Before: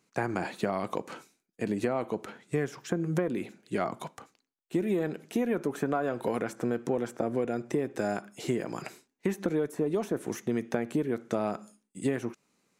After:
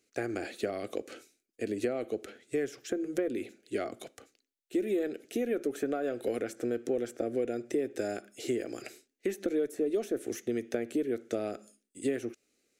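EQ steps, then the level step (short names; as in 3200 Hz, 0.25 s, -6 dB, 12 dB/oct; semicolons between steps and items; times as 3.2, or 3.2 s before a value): fixed phaser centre 400 Hz, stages 4; 0.0 dB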